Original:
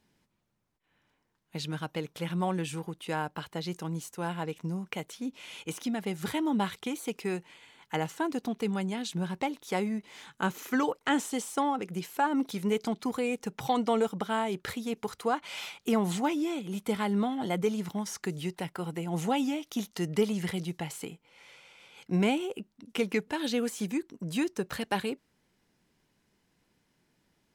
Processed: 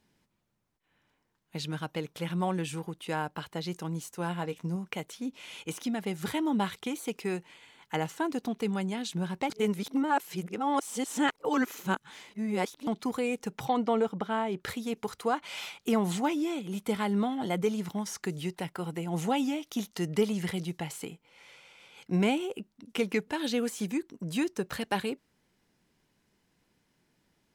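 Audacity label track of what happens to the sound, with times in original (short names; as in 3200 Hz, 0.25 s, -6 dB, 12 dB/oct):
4.120000	4.760000	doubler 17 ms -11.5 dB
9.500000	12.870000	reverse
13.650000	14.610000	LPF 2400 Hz 6 dB/oct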